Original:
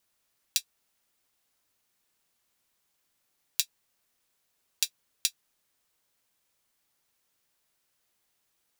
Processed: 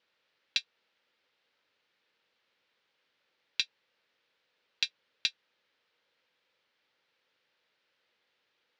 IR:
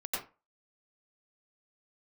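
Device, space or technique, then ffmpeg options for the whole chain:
overdrive pedal into a guitar cabinet: -filter_complex "[0:a]asplit=2[link_01][link_02];[link_02]highpass=frequency=720:poles=1,volume=12dB,asoftclip=type=tanh:threshold=-2dB[link_03];[link_01][link_03]amix=inputs=2:normalize=0,lowpass=frequency=4100:poles=1,volume=-6dB,highpass=86,equalizer=frequency=500:width_type=q:width=4:gain=7,equalizer=frequency=710:width_type=q:width=4:gain=-6,equalizer=frequency=1100:width_type=q:width=4:gain=-5,lowpass=frequency=4300:width=0.5412,lowpass=frequency=4300:width=1.3066"

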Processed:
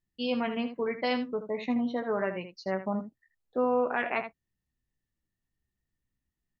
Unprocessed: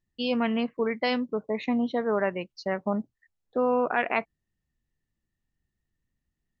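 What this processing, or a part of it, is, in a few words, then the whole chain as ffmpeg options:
slapback doubling: -filter_complex "[0:a]asplit=3[link_01][link_02][link_03];[link_02]adelay=16,volume=-8dB[link_04];[link_03]adelay=79,volume=-10dB[link_05];[link_01][link_04][link_05]amix=inputs=3:normalize=0,volume=-4.5dB"

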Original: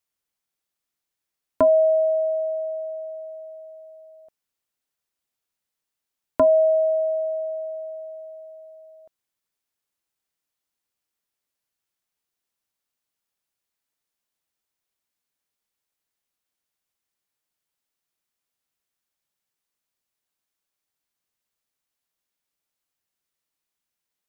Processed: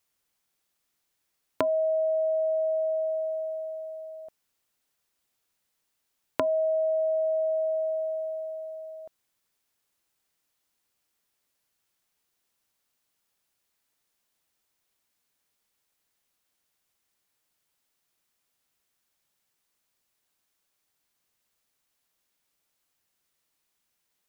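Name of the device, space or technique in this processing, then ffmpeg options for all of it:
serial compression, peaks first: -af "acompressor=threshold=-28dB:ratio=5,acompressor=threshold=-33dB:ratio=2,volume=6.5dB"

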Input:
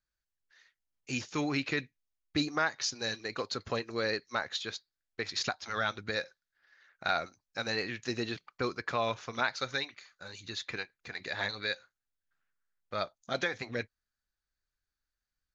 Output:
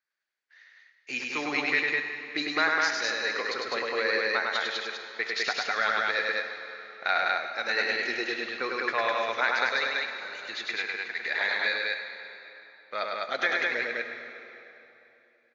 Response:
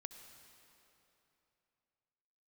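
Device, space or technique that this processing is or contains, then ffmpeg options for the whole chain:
station announcement: -filter_complex "[0:a]highpass=410,lowpass=4900,equalizer=frequency=2000:width_type=o:width=0.56:gain=8,aecho=1:1:102|204.1:0.708|0.794[link_01];[1:a]atrim=start_sample=2205[link_02];[link_01][link_02]afir=irnorm=-1:irlink=0,volume=7dB"

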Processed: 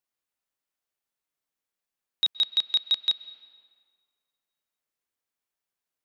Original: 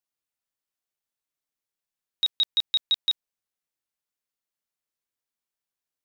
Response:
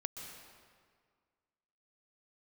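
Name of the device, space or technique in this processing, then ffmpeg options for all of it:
filtered reverb send: -filter_complex "[0:a]asettb=1/sr,asplit=3[link_01][link_02][link_03];[link_01]atrim=end=2.454[link_04];[link_02]atrim=start=2.45:end=3.09,asetpts=PTS-STARTPTS,afade=type=in:duration=0.004:curve=qsin,afade=type=out:start_time=0.636:duration=0.004:curve=qsin,highpass=frequency=280:poles=1[link_05];[link_03]atrim=start=3.086[link_06];[link_04][link_05]acrossfade=duration=0.004:curve1=hsin:curve2=qsin[link_07];[link_07][link_06]acrossfade=duration=0.004:curve1=qsin:curve2=hsin,asplit=2[link_08][link_09];[link_09]highpass=190,lowpass=3400[link_10];[1:a]atrim=start_sample=2205[link_11];[link_10][link_11]afir=irnorm=-1:irlink=0,volume=-6.5dB[link_12];[link_08][link_12]amix=inputs=2:normalize=0"

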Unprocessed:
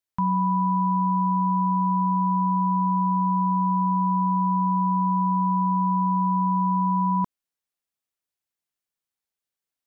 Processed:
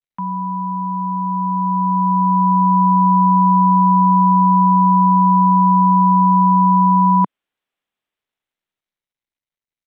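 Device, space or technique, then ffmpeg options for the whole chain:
Bluetooth headset: -af "highpass=frequency=170:width=0.5412,highpass=frequency=170:width=1.3066,dynaudnorm=framelen=310:gausssize=13:maxgain=11dB,aresample=8000,aresample=44100" -ar 32000 -c:a sbc -b:a 64k

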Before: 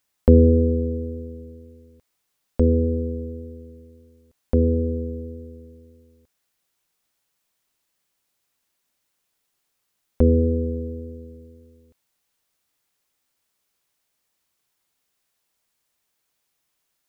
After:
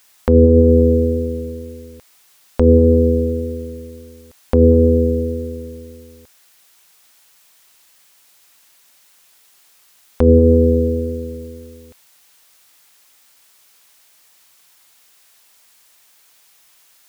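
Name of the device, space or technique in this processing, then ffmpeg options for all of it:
mastering chain: -af "equalizer=frequency=790:width_type=o:width=0.77:gain=1.5,acompressor=threshold=-20dB:ratio=2.5,tiltshelf=frequency=680:gain=-5.5,alimiter=level_in=18dB:limit=-1dB:release=50:level=0:latency=1,volume=-1dB"

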